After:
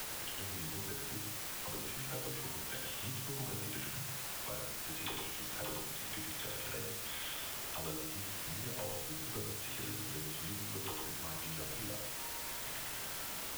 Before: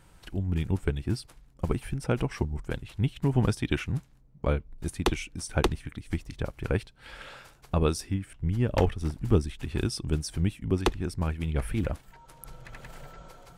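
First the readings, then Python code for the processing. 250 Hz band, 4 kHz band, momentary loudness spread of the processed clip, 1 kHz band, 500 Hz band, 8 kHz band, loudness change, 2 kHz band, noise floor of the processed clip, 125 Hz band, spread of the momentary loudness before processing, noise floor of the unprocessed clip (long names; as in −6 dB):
−17.0 dB, −1.0 dB, 1 LU, −8.5 dB, −14.5 dB, +3.5 dB, −9.0 dB, −5.0 dB, −43 dBFS, −18.5 dB, 19 LU, −58 dBFS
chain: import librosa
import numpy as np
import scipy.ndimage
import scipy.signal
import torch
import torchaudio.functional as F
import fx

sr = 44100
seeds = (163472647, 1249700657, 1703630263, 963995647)

p1 = fx.env_lowpass_down(x, sr, base_hz=1300.0, full_db=-24.5)
p2 = fx.low_shelf(p1, sr, hz=490.0, db=-10.5)
p3 = fx.resonator_bank(p2, sr, root=44, chord='major', decay_s=0.48)
p4 = fx.leveller(p3, sr, passes=1)
p5 = fx.lowpass_res(p4, sr, hz=3300.0, q=5.5)
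p6 = fx.dispersion(p5, sr, late='lows', ms=44.0, hz=800.0)
p7 = fx.quant_dither(p6, sr, seeds[0], bits=6, dither='triangular')
p8 = p6 + (p7 * 10.0 ** (-8.0 / 20.0))
p9 = p8 + 10.0 ** (-4.0 / 20.0) * np.pad(p8, (int(105 * sr / 1000.0), 0))[:len(p8)]
p10 = fx.band_squash(p9, sr, depth_pct=70)
y = p10 * 10.0 ** (-1.0 / 20.0)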